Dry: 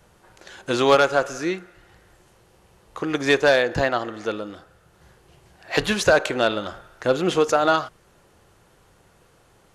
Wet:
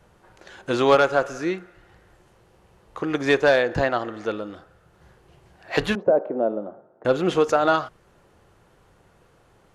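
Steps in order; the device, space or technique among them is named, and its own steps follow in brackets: behind a face mask (treble shelf 3.4 kHz -8 dB); 5.95–7.05 s: Chebyshev band-pass 210–660 Hz, order 2

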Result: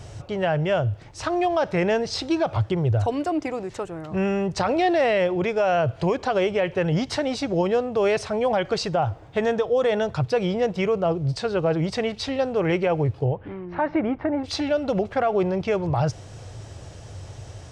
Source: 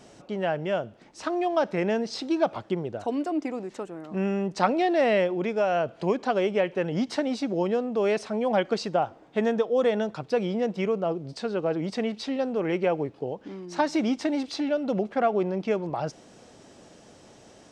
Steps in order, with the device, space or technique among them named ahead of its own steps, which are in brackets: 13.24–14.43 s: low-pass 2.9 kHz -> 1.6 kHz 24 dB/octave; car stereo with a boomy subwoofer (resonant low shelf 150 Hz +13.5 dB, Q 3; peak limiter -20 dBFS, peak gain reduction 11 dB); trim +6.5 dB

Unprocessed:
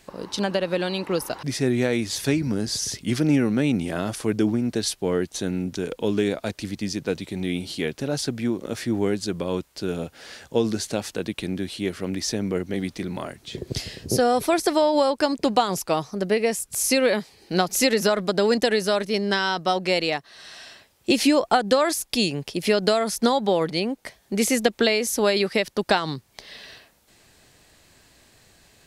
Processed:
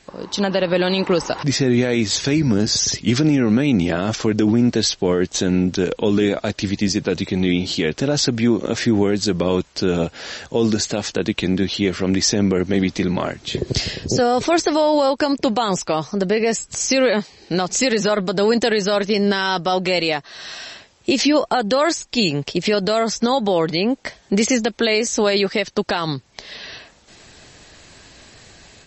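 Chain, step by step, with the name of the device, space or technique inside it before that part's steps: low-bitrate web radio (level rider gain up to 8 dB; peak limiter -10.5 dBFS, peak gain reduction 9 dB; trim +3 dB; MP3 32 kbps 32 kHz)

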